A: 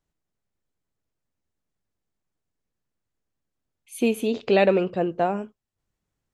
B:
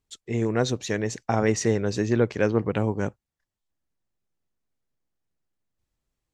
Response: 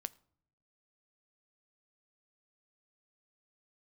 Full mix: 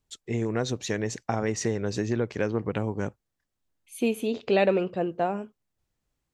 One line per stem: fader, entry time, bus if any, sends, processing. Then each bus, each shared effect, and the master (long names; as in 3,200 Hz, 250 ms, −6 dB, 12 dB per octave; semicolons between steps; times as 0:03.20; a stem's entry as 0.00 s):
−3.5 dB, 0.00 s, no send, no processing
0.0 dB, 0.00 s, no send, downward compressor 3 to 1, threshold −24 dBFS, peak gain reduction 7 dB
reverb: not used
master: no processing